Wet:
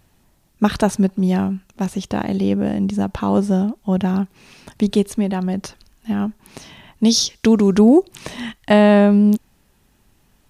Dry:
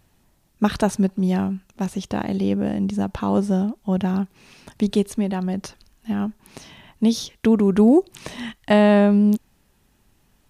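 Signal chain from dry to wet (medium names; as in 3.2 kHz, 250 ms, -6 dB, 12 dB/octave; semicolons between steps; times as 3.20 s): 7.05–7.79 s: peaking EQ 5.4 kHz +12 dB 1.1 oct; trim +3 dB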